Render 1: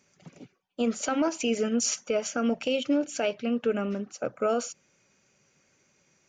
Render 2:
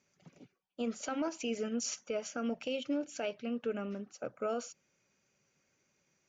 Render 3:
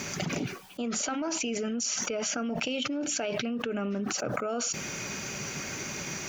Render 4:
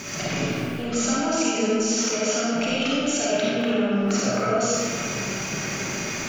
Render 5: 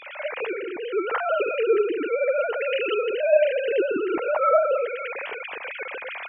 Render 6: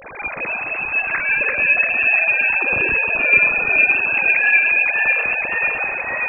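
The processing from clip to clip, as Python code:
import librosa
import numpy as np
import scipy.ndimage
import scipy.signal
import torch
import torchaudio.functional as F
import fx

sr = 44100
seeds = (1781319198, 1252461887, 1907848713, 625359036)

y1 = scipy.signal.sosfilt(scipy.signal.butter(4, 7500.0, 'lowpass', fs=sr, output='sos'), x)
y1 = y1 * librosa.db_to_amplitude(-9.0)
y2 = fx.peak_eq(y1, sr, hz=520.0, db=-7.0, octaves=0.23)
y2 = fx.env_flatten(y2, sr, amount_pct=100)
y3 = fx.rev_freeverb(y2, sr, rt60_s=2.4, hf_ratio=0.6, predelay_ms=10, drr_db=-7.5)
y4 = fx.sine_speech(y3, sr)
y5 = fx.echo_pitch(y4, sr, ms=271, semitones=-1, count=3, db_per_echo=-3.0)
y5 = fx.freq_invert(y5, sr, carrier_hz=3000)
y5 = y5 * librosa.db_to_amplitude(3.5)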